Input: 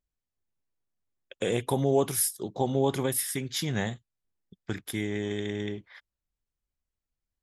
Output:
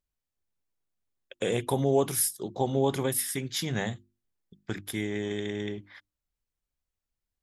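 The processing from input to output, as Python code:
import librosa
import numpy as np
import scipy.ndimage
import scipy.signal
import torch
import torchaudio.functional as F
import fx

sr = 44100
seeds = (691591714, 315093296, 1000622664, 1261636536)

y = fx.hum_notches(x, sr, base_hz=50, count=7)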